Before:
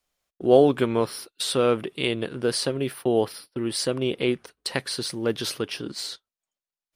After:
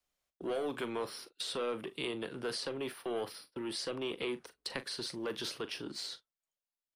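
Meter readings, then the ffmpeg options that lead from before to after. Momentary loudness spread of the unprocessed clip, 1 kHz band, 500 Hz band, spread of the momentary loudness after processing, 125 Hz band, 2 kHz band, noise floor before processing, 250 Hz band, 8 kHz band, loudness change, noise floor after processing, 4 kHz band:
11 LU, -13.0 dB, -15.0 dB, 5 LU, -19.5 dB, -9.5 dB, under -85 dBFS, -14.5 dB, -13.5 dB, -13.5 dB, under -85 dBFS, -9.5 dB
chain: -filter_complex "[0:a]acrossover=split=200|630|6900[s0][s1][s2][s3];[s0]acompressor=threshold=0.00631:ratio=4[s4];[s1]acompressor=threshold=0.0708:ratio=4[s5];[s2]acompressor=threshold=0.0316:ratio=4[s6];[s3]acompressor=threshold=0.00398:ratio=4[s7];[s4][s5][s6][s7]amix=inputs=4:normalize=0,acrossover=split=840|5400[s8][s9][s10];[s8]asoftclip=type=tanh:threshold=0.0473[s11];[s11][s9][s10]amix=inputs=3:normalize=0,asplit=2[s12][s13];[s13]adelay=41,volume=0.211[s14];[s12][s14]amix=inputs=2:normalize=0,volume=0.447"

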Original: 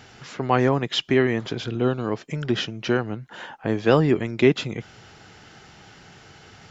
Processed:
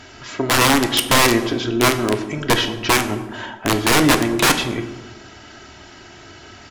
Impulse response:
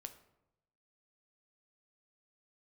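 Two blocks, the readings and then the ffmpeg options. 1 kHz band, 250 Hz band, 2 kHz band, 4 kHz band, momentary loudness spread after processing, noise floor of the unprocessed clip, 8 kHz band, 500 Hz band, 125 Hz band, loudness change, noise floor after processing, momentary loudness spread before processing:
+9.0 dB, +4.0 dB, +10.5 dB, +11.0 dB, 13 LU, -49 dBFS, no reading, +1.0 dB, +1.0 dB, +6.0 dB, -42 dBFS, 13 LU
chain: -filter_complex "[0:a]aecho=1:1:3.1:0.64,aeval=exprs='(mod(4.73*val(0)+1,2)-1)/4.73':c=same[s0];[1:a]atrim=start_sample=2205,afade=t=out:st=0.4:d=0.01,atrim=end_sample=18081,asetrate=26019,aresample=44100[s1];[s0][s1]afir=irnorm=-1:irlink=0,volume=2.51"

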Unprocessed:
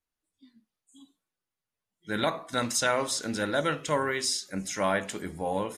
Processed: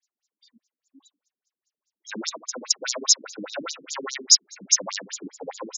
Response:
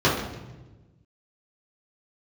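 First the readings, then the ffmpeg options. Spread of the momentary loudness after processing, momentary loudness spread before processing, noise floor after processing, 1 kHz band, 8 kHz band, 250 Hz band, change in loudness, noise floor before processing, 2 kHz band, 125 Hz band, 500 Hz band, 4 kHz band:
19 LU, 7 LU, under -85 dBFS, -8.5 dB, +12.0 dB, -6.5 dB, +6.5 dB, under -85 dBFS, -6.0 dB, under -15 dB, -8.0 dB, +10.0 dB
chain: -af "aeval=exprs='0.211*(cos(1*acos(clip(val(0)/0.211,-1,1)))-cos(1*PI/2))+0.106*(cos(5*acos(clip(val(0)/0.211,-1,1)))-cos(5*PI/2))':c=same,adynamicequalizer=threshold=0.00562:dfrequency=1000:dqfactor=6:tfrequency=1000:tqfactor=6:attack=5:release=100:ratio=0.375:range=1.5:mode=boostabove:tftype=bell,aexciter=amount=5.7:drive=3.4:freq=5300,aemphasis=mode=production:type=75fm,afftfilt=real='re*between(b*sr/1024,240*pow(5300/240,0.5+0.5*sin(2*PI*4.9*pts/sr))/1.41,240*pow(5300/240,0.5+0.5*sin(2*PI*4.9*pts/sr))*1.41)':imag='im*between(b*sr/1024,240*pow(5300/240,0.5+0.5*sin(2*PI*4.9*pts/sr))/1.41,240*pow(5300/240,0.5+0.5*sin(2*PI*4.9*pts/sr))*1.41)':win_size=1024:overlap=0.75,volume=0.501"

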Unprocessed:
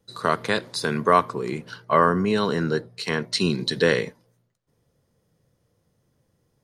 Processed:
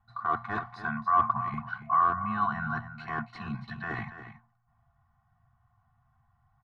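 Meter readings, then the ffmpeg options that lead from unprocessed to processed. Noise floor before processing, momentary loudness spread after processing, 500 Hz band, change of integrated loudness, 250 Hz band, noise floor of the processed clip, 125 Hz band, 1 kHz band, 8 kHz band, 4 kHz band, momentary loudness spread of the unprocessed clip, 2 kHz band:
-71 dBFS, 13 LU, -20.5 dB, -7.0 dB, -12.0 dB, -71 dBFS, -9.0 dB, -2.5 dB, under -30 dB, -25.0 dB, 10 LU, -7.0 dB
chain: -af "afftfilt=real='re*(1-between(b*sr/4096,230,670))':imag='im*(1-between(b*sr/4096,230,670))':win_size=4096:overlap=0.75,areverse,acompressor=threshold=0.0316:ratio=8,areverse,aeval=exprs='0.0562*(abs(mod(val(0)/0.0562+3,4)-2)-1)':c=same,adynamicequalizer=threshold=0.00126:dfrequency=290:dqfactor=1:tfrequency=290:tqfactor=1:attack=5:release=100:ratio=0.375:range=3.5:mode=boostabove:tftype=bell,lowpass=f=1200:t=q:w=2,aecho=1:1:2.7:0.87,aecho=1:1:282:0.266"

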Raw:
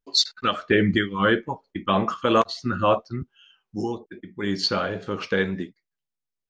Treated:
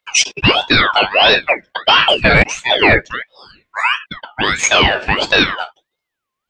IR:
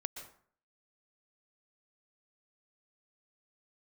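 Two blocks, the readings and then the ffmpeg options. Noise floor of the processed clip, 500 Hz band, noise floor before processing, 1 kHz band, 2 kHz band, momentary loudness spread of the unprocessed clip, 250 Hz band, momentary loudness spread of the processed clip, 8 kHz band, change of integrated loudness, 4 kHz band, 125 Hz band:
-80 dBFS, +6.5 dB, -85 dBFS, +9.5 dB, +16.0 dB, 14 LU, +2.5 dB, 14 LU, +17.5 dB, +11.5 dB, +14.0 dB, +7.0 dB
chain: -filter_complex "[0:a]acrossover=split=520 2100:gain=0.141 1 0.251[s0][s1][s2];[s0][s1][s2]amix=inputs=3:normalize=0,apsyclip=17.8,aeval=exprs='val(0)*sin(2*PI*1600*n/s+1600*0.35/1.5*sin(2*PI*1.5*n/s))':c=same,volume=0.794"

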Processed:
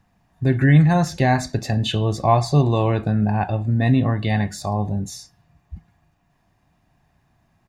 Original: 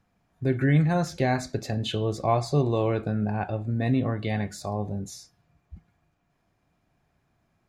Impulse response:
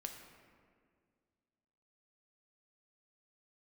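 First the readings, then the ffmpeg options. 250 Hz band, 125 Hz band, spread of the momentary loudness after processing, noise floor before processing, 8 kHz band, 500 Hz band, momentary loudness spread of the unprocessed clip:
+6.5 dB, +8.0 dB, 10 LU, -72 dBFS, +6.5 dB, +3.5 dB, 9 LU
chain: -af "aecho=1:1:1.1:0.4,volume=2"

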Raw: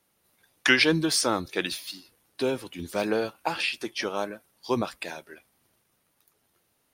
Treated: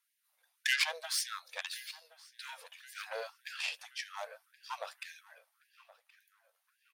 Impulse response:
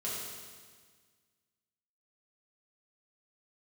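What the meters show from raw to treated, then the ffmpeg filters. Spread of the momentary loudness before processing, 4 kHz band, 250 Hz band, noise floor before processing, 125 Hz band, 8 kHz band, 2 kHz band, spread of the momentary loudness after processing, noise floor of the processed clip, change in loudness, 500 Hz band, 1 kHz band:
17 LU, -8.5 dB, under -40 dB, -72 dBFS, under -40 dB, -8.0 dB, -9.5 dB, 18 LU, -81 dBFS, -10.5 dB, -19.0 dB, -12.5 dB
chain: -filter_complex "[0:a]aeval=exprs='0.531*(cos(1*acos(clip(val(0)/0.531,-1,1)))-cos(1*PI/2))+0.0841*(cos(6*acos(clip(val(0)/0.531,-1,1)))-cos(6*PI/2))':c=same,asplit=2[s0][s1];[s1]adelay=1073,lowpass=f=3000:p=1,volume=0.126,asplit=2[s2][s3];[s3]adelay=1073,lowpass=f=3000:p=1,volume=0.5,asplit=2[s4][s5];[s5]adelay=1073,lowpass=f=3000:p=1,volume=0.5,asplit=2[s6][s7];[s7]adelay=1073,lowpass=f=3000:p=1,volume=0.5[s8];[s0][s2][s4][s6][s8]amix=inputs=5:normalize=0,afftfilt=real='re*gte(b*sr/1024,450*pow(1600/450,0.5+0.5*sin(2*PI*1.8*pts/sr)))':imag='im*gte(b*sr/1024,450*pow(1600/450,0.5+0.5*sin(2*PI*1.8*pts/sr)))':win_size=1024:overlap=0.75,volume=0.355"

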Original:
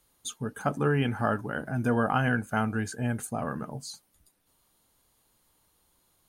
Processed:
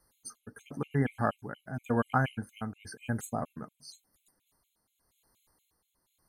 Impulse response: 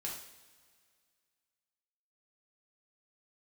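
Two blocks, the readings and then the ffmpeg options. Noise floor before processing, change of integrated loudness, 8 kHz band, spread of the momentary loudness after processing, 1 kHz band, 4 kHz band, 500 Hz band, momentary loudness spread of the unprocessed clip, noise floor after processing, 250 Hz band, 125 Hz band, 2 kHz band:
-70 dBFS, -4.0 dB, -7.0 dB, 18 LU, -4.5 dB, -9.0 dB, -5.5 dB, 13 LU, -80 dBFS, -5.0 dB, -4.5 dB, -7.0 dB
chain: -af "tremolo=f=0.93:d=0.56,afftfilt=real='re*gt(sin(2*PI*4.2*pts/sr)*(1-2*mod(floor(b*sr/1024/2100),2)),0)':imag='im*gt(sin(2*PI*4.2*pts/sr)*(1-2*mod(floor(b*sr/1024/2100),2)),0)':win_size=1024:overlap=0.75"

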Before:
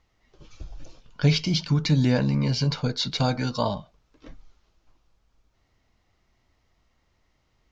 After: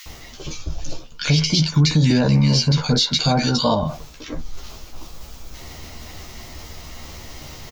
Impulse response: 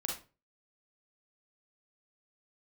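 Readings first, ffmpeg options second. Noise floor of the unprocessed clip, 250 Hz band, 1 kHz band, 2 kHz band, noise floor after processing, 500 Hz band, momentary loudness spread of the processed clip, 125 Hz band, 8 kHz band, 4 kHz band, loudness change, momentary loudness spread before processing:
-70 dBFS, +6.0 dB, +7.0 dB, +6.5 dB, -40 dBFS, +5.5 dB, 21 LU, +6.0 dB, no reading, +9.0 dB, +6.5 dB, 6 LU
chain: -filter_complex "[0:a]aemphasis=mode=production:type=50kf,acrossover=split=1600[s0][s1];[s0]adelay=60[s2];[s2][s1]amix=inputs=2:normalize=0,areverse,acompressor=mode=upward:threshold=0.0501:ratio=2.5,areverse,asplit=2[s3][s4];[s4]adelay=13,volume=0.562[s5];[s3][s5]amix=inputs=2:normalize=0,alimiter=level_in=5.62:limit=0.891:release=50:level=0:latency=1,volume=0.447"

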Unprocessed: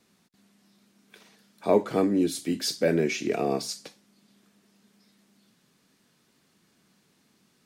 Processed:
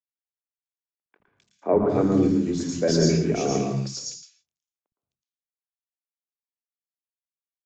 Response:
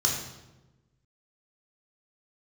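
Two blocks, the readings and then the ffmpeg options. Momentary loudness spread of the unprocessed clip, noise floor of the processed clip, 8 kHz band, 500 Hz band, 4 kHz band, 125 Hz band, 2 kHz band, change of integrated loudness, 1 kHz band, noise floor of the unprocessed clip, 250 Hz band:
10 LU, under -85 dBFS, +4.0 dB, +2.5 dB, +1.0 dB, +10.5 dB, -3.0 dB, +3.5 dB, +1.5 dB, -67 dBFS, +5.0 dB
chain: -filter_complex "[0:a]aemphasis=mode=reproduction:type=bsi,aexciter=amount=4.3:drive=3.1:freq=5400,aresample=16000,aeval=exprs='sgn(val(0))*max(abs(val(0))-0.00335,0)':c=same,aresample=44100,aeval=exprs='0.501*(cos(1*acos(clip(val(0)/0.501,-1,1)))-cos(1*PI/2))+0.01*(cos(4*acos(clip(val(0)/0.501,-1,1)))-cos(4*PI/2))':c=same,acrossover=split=240|2200[s0][s1][s2];[s0]adelay=60[s3];[s2]adelay=260[s4];[s3][s1][s4]amix=inputs=3:normalize=0,asplit=2[s5][s6];[1:a]atrim=start_sample=2205,afade=t=out:st=0.23:d=0.01,atrim=end_sample=10584,adelay=112[s7];[s6][s7]afir=irnorm=-1:irlink=0,volume=0.237[s8];[s5][s8]amix=inputs=2:normalize=0"

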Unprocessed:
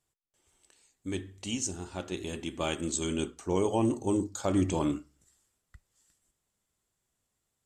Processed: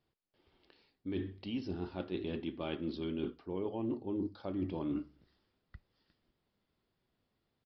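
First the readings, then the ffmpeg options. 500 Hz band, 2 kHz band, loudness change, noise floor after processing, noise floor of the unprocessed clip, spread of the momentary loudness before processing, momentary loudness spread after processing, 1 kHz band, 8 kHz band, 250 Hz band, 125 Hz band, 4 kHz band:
-7.5 dB, -9.5 dB, -7.5 dB, -83 dBFS, -82 dBFS, 10 LU, 4 LU, -12.0 dB, under -40 dB, -6.0 dB, -8.0 dB, -10.0 dB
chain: -af "equalizer=f=270:t=o:w=2.3:g=7,areverse,acompressor=threshold=0.02:ratio=8,areverse,aresample=11025,aresample=44100"

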